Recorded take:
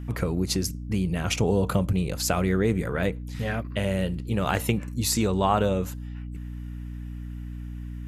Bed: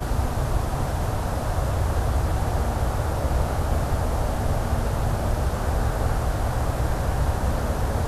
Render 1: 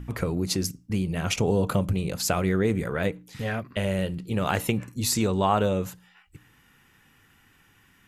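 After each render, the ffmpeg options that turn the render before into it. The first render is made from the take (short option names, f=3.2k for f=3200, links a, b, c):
-af "bandreject=f=60:t=h:w=4,bandreject=f=120:t=h:w=4,bandreject=f=180:t=h:w=4,bandreject=f=240:t=h:w=4,bandreject=f=300:t=h:w=4"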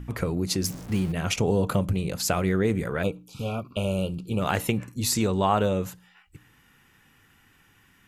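-filter_complex "[0:a]asettb=1/sr,asplit=3[a][b][c];[a]atrim=end=0.644[d];[b]atrim=start=0.64:end=1.12,asetpts=PTS-STARTPTS,afade=t=in:d=0.004:c=qsin,afade=t=out:st=0.476:d=0.004:c=qsin,aeval=exprs='val(0)+0.5*0.0178*sgn(val(0))':c=same[e];[c]atrim=start=1.116[f];[d][e]acrossfade=d=0.004:c1=hsin:c2=qsin[g];[g][f]acrossfade=d=0.004:c1=qsin:c2=hsin,asplit=3[h][i][j];[h]afade=t=out:st=3.02:d=0.02[k];[i]asuperstop=centerf=1800:order=20:qfactor=2.1,afade=t=in:st=3.02:d=0.02,afade=t=out:st=4.4:d=0.02[l];[j]afade=t=in:st=4.4:d=0.02[m];[k][l][m]amix=inputs=3:normalize=0"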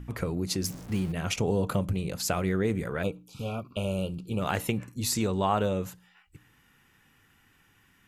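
-af "volume=-3.5dB"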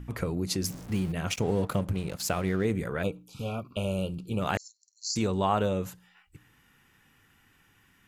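-filter_complex "[0:a]asettb=1/sr,asplit=3[a][b][c];[a]atrim=end=1.274[d];[b]atrim=start=1.27:end=2.65,asetpts=PTS-STARTPTS,afade=t=in:d=0.004:c=qsin,afade=t=out:st=1.376:d=0.004:c=qsin,aeval=exprs='sgn(val(0))*max(abs(val(0))-0.00562,0)':c=same[e];[c]atrim=start=2.646[f];[d][e]acrossfade=d=0.004:c1=hsin:c2=qsin[g];[g][f]acrossfade=d=0.004:c1=qsin:c2=hsin,asettb=1/sr,asplit=3[h][i][j];[h]atrim=end=4.574[k];[i]atrim=start=4.57:end=5.16,asetpts=PTS-STARTPTS,afade=t=in:d=0.004:c=qsin,afade=t=out:st=0.586:d=0.004:c=qsin,asuperpass=centerf=5600:order=20:qfactor=1.8[l];[j]atrim=start=5.156[m];[k][l]acrossfade=d=0.004:c1=hsin:c2=qsin[n];[n][m]acrossfade=d=0.004:c1=qsin:c2=hsin"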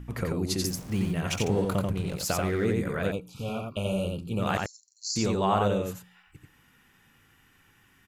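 -af "aecho=1:1:88:0.708"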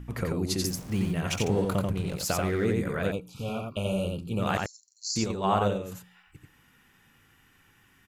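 -filter_complex "[0:a]asettb=1/sr,asplit=3[a][b][c];[a]atrim=end=5.244[d];[b]atrim=start=5.24:end=5.92,asetpts=PTS-STARTPTS,afade=t=in:d=0.004:c=qsin,afade=t=out:st=0.676:d=0.004:c=qsin,agate=range=-6dB:threshold=-26dB:ratio=16:release=100:detection=peak[e];[c]atrim=start=5.916[f];[d][e]acrossfade=d=0.004:c1=hsin:c2=qsin[g];[g][f]acrossfade=d=0.004:c1=qsin:c2=hsin"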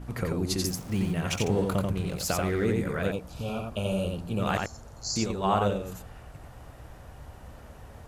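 -filter_complex "[1:a]volume=-22.5dB[a];[0:a][a]amix=inputs=2:normalize=0"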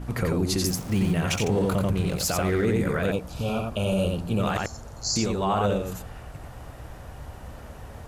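-af "acontrast=36,alimiter=limit=-15dB:level=0:latency=1:release=14"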